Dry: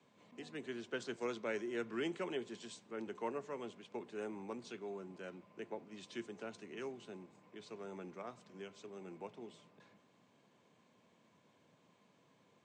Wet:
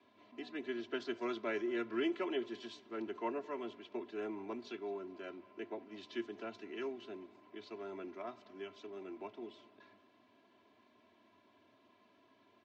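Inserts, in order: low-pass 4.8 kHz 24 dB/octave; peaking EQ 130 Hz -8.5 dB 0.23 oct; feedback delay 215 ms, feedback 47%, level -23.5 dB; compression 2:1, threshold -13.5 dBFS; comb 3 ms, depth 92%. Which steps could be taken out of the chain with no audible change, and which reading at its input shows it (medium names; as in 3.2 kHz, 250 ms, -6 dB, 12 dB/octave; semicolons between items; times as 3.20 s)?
compression, threshold -13.5 dBFS: peak at its input -27.0 dBFS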